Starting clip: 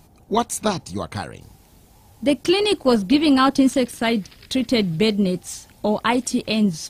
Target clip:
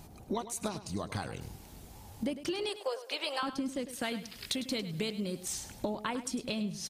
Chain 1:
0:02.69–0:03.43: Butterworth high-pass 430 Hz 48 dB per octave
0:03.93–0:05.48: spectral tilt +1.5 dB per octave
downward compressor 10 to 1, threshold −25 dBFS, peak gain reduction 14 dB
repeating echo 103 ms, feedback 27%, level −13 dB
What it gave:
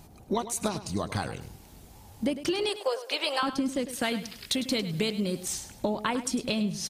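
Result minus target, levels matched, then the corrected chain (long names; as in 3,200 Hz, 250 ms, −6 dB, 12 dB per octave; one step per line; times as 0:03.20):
downward compressor: peak gain reduction −6.5 dB
0:02.69–0:03.43: Butterworth high-pass 430 Hz 48 dB per octave
0:03.93–0:05.48: spectral tilt +1.5 dB per octave
downward compressor 10 to 1, threshold −32 dBFS, peak gain reduction 20 dB
repeating echo 103 ms, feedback 27%, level −13 dB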